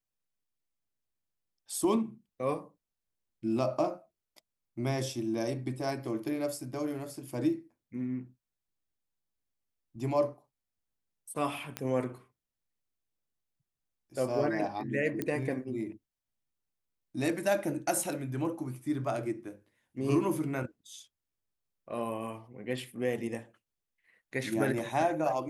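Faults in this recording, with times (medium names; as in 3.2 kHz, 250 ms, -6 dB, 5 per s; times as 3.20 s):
11.77 s: pop -17 dBFS
15.22 s: pop -18 dBFS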